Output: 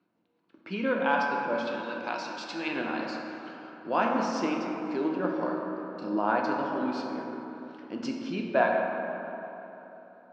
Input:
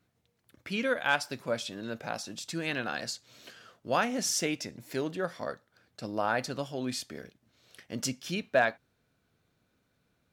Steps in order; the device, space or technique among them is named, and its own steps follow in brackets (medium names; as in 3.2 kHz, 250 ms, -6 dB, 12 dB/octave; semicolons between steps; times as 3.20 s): high-pass 180 Hz 12 dB/octave; 1.67–2.68 s: tilt shelf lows -9.5 dB, about 940 Hz; combo amplifier with spring reverb and tremolo (spring tank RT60 2.6 s, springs 48 ms, chirp 45 ms, DRR 8 dB; tremolo 5.7 Hz, depth 34%; cabinet simulation 85–4100 Hz, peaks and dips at 130 Hz -8 dB, 190 Hz +5 dB, 320 Hz +9 dB, 960 Hz +8 dB, 1.9 kHz -7 dB, 3.5 kHz -8 dB); 5.38–6.18 s: doubling 33 ms -5 dB; plate-style reverb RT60 3.2 s, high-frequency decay 0.35×, DRR 0.5 dB